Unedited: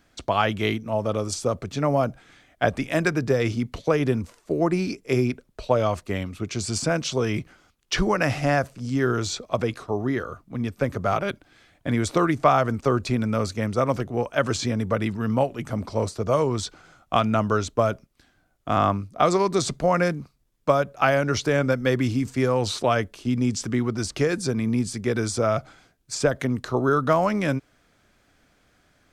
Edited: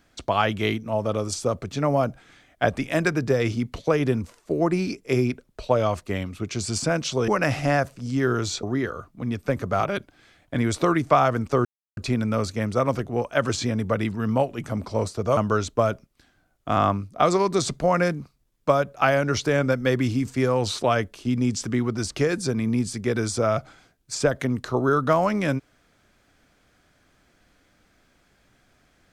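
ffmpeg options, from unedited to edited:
ffmpeg -i in.wav -filter_complex "[0:a]asplit=5[link_01][link_02][link_03][link_04][link_05];[link_01]atrim=end=7.282[link_06];[link_02]atrim=start=8.068:end=9.422[link_07];[link_03]atrim=start=9.958:end=12.98,asetpts=PTS-STARTPTS,afade=type=out:start_time=3.018:duration=0.004:curve=hsin,apad=pad_dur=0.32[link_08];[link_04]atrim=start=12.98:end=16.382,asetpts=PTS-STARTPTS,afade=type=in:duration=0.004:curve=hsin[link_09];[link_05]atrim=start=17.368[link_10];[link_06][link_07]acrossfade=duration=0.004:curve1=hsin:curve2=hsin[link_11];[link_08][link_09]concat=n=2:v=0:a=1[link_12];[link_11][link_12]acrossfade=duration=0.004:curve1=hsin:curve2=hsin[link_13];[link_13][link_10]acrossfade=duration=0.004:curve1=hsin:curve2=hsin" out.wav

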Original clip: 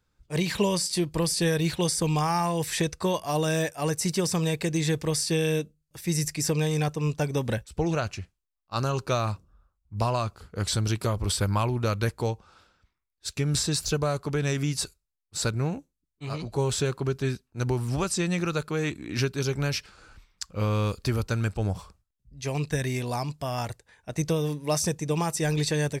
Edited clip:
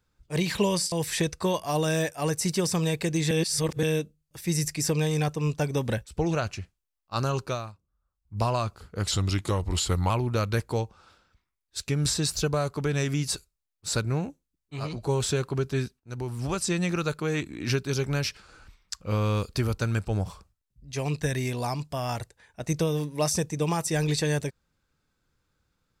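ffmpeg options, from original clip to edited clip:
ffmpeg -i in.wav -filter_complex "[0:a]asplit=9[link_01][link_02][link_03][link_04][link_05][link_06][link_07][link_08][link_09];[link_01]atrim=end=0.922[link_10];[link_02]atrim=start=2.518:end=4.912[link_11];[link_03]atrim=start=4.908:end=5.432,asetpts=PTS-STARTPTS,areverse[link_12];[link_04]atrim=start=5.428:end=9.32,asetpts=PTS-STARTPTS,afade=type=out:start_time=3.532:duration=0.36:silence=0.125893[link_13];[link_05]atrim=start=9.32:end=9.61,asetpts=PTS-STARTPTS,volume=-18dB[link_14];[link_06]atrim=start=9.61:end=10.714,asetpts=PTS-STARTPTS,afade=type=in:duration=0.36:silence=0.125893[link_15];[link_07]atrim=start=10.71:end=11.59,asetpts=PTS-STARTPTS,asetrate=39249,aresample=44100,atrim=end_sample=43604,asetpts=PTS-STARTPTS[link_16];[link_08]atrim=start=11.586:end=17.49,asetpts=PTS-STARTPTS,afade=type=out:start_time=5.9:duration=0.004:curve=hsin:silence=0.211349[link_17];[link_09]atrim=start=17.49,asetpts=PTS-STARTPTS,afade=type=in:duration=0.69:silence=0.211349[link_18];[link_10][link_11]acrossfade=duration=0.004:curve1=hsin:curve2=hsin[link_19];[link_19][link_12]acrossfade=duration=0.004:curve1=hsin:curve2=hsin[link_20];[link_13][link_14][link_15]concat=n=3:v=0:a=1[link_21];[link_20][link_21]acrossfade=duration=0.004:curve1=hsin:curve2=hsin[link_22];[link_22][link_16]acrossfade=duration=0.004:curve1=hsin:curve2=hsin[link_23];[link_17][link_18]concat=n=2:v=0:a=1[link_24];[link_23][link_24]acrossfade=duration=0.004:curve1=hsin:curve2=hsin" out.wav

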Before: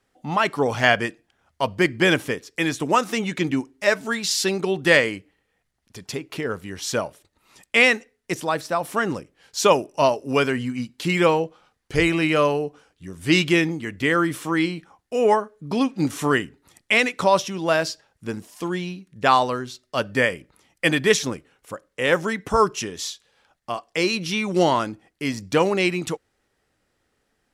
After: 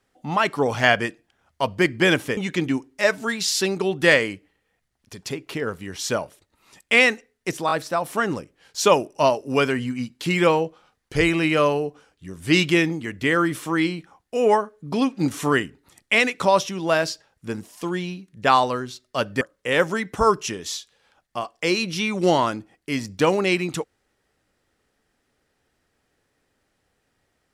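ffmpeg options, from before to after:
ffmpeg -i in.wav -filter_complex "[0:a]asplit=5[link_01][link_02][link_03][link_04][link_05];[link_01]atrim=end=2.372[link_06];[link_02]atrim=start=3.198:end=8.522[link_07];[link_03]atrim=start=8.498:end=8.522[link_08];[link_04]atrim=start=8.498:end=20.202[link_09];[link_05]atrim=start=21.738[link_10];[link_06][link_07]acrossfade=duration=0.004:curve1=hsin:curve2=hsin[link_11];[link_11][link_08]acrossfade=duration=0.004:curve1=hsin:curve2=hsin[link_12];[link_12][link_09]acrossfade=duration=0.004:curve1=hsin:curve2=hsin[link_13];[link_13][link_10]acrossfade=duration=0.004:curve1=hsin:curve2=hsin" out.wav

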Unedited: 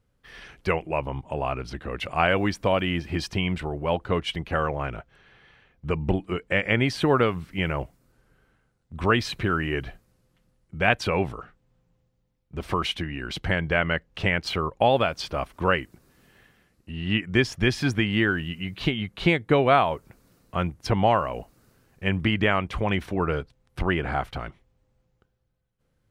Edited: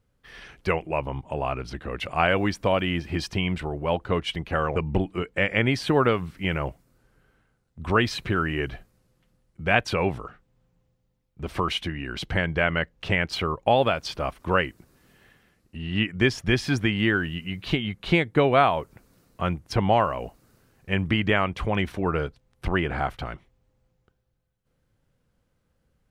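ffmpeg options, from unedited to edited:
ffmpeg -i in.wav -filter_complex "[0:a]asplit=2[link_01][link_02];[link_01]atrim=end=4.762[link_03];[link_02]atrim=start=5.898[link_04];[link_03][link_04]acrossfade=duration=0.004:curve1=hsin:curve2=hsin" out.wav

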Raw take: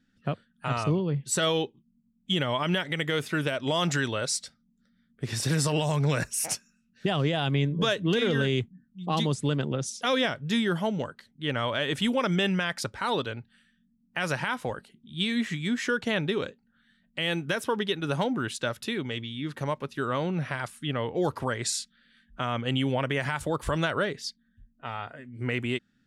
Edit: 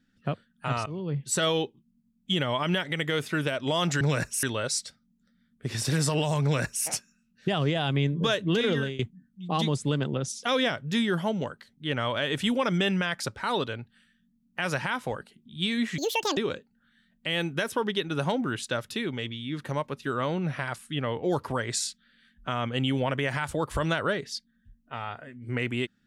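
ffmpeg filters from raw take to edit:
ffmpeg -i in.wav -filter_complex "[0:a]asplit=7[link_01][link_02][link_03][link_04][link_05][link_06][link_07];[link_01]atrim=end=0.86,asetpts=PTS-STARTPTS,afade=type=out:start_time=0.856:duration=0.004:curve=hsin:silence=0.1[link_08];[link_02]atrim=start=0.86:end=4.012,asetpts=PTS-STARTPTS,afade=type=in:duration=0.34:silence=0.1[link_09];[link_03]atrim=start=6.008:end=6.432[link_10];[link_04]atrim=start=4.008:end=8.57,asetpts=PTS-STARTPTS,afade=type=out:start_time=4.302:duration=0.26:silence=0.125893[link_11];[link_05]atrim=start=8.57:end=15.564,asetpts=PTS-STARTPTS,afade=type=in:duration=0.004:curve=hsin:silence=0.125893[link_12];[link_06]atrim=start=15.56:end=16.29,asetpts=PTS-STARTPTS,asetrate=82467,aresample=44100[link_13];[link_07]atrim=start=16.286[link_14];[link_08][link_09]concat=n=2:v=0:a=1[link_15];[link_15][link_10]acrossfade=duration=0.004:curve1=hsin:curve2=hsin[link_16];[link_11][link_12]concat=n=2:v=0:a=1[link_17];[link_16][link_17]acrossfade=duration=0.004:curve1=hsin:curve2=hsin[link_18];[link_18][link_13]acrossfade=duration=0.004:curve1=hsin:curve2=hsin[link_19];[link_19][link_14]acrossfade=duration=0.004:curve1=hsin:curve2=hsin" out.wav

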